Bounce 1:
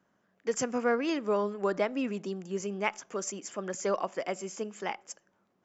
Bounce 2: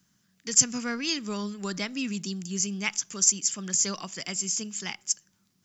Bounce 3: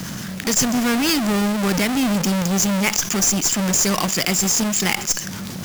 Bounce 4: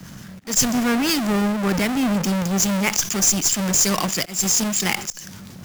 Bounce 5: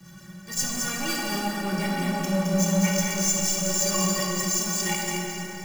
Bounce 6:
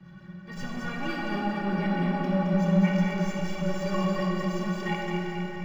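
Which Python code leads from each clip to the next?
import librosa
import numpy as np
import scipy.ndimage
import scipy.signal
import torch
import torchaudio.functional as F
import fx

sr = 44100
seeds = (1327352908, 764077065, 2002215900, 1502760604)

y1 = fx.curve_eq(x, sr, hz=(160.0, 550.0, 2700.0, 4800.0), db=(0, -23, -3, 8))
y1 = y1 * 10.0 ** (9.0 / 20.0)
y2 = fx.halfwave_hold(y1, sr)
y2 = fx.tube_stage(y2, sr, drive_db=17.0, bias=0.45)
y2 = fx.env_flatten(y2, sr, amount_pct=70)
y2 = y2 * 10.0 ** (3.5 / 20.0)
y3 = fx.auto_swell(y2, sr, attack_ms=142.0)
y3 = fx.band_widen(y3, sr, depth_pct=70)
y3 = y3 * 10.0 ** (-1.0 / 20.0)
y4 = fx.stiff_resonator(y3, sr, f0_hz=170.0, decay_s=0.21, stiffness=0.03)
y4 = y4 + 10.0 ** (-4.5 / 20.0) * np.pad(y4, (int(218 * sr / 1000.0), 0))[:len(y4)]
y4 = fx.rev_plate(y4, sr, seeds[0], rt60_s=3.8, hf_ratio=0.6, predelay_ms=0, drr_db=-1.5)
y4 = y4 * 10.0 ** (1.0 / 20.0)
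y5 = fx.air_absorb(y4, sr, metres=390.0)
y5 = fx.echo_alternate(y5, sr, ms=229, hz=830.0, feedback_pct=63, wet_db=-6.5)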